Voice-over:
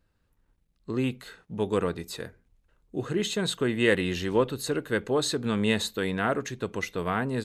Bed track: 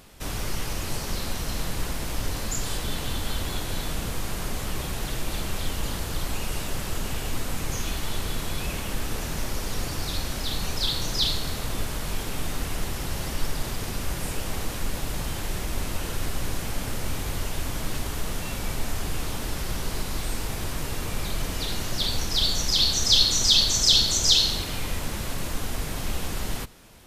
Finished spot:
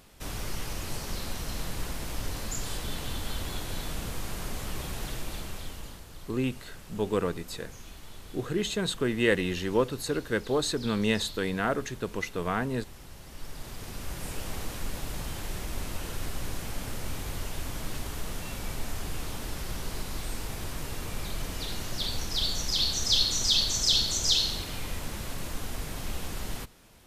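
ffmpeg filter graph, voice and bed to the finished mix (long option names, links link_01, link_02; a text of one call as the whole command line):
ffmpeg -i stem1.wav -i stem2.wav -filter_complex "[0:a]adelay=5400,volume=-1.5dB[link_01];[1:a]volume=6.5dB,afade=type=out:start_time=5.05:duration=0.99:silence=0.251189,afade=type=in:start_time=13.25:duration=1.17:silence=0.266073[link_02];[link_01][link_02]amix=inputs=2:normalize=0" out.wav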